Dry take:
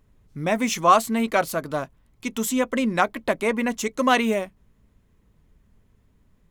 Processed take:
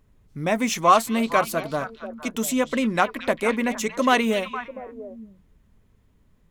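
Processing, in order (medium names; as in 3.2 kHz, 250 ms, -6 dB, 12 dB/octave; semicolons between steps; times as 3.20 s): repeats whose band climbs or falls 231 ms, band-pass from 3.2 kHz, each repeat -1.4 oct, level -6 dB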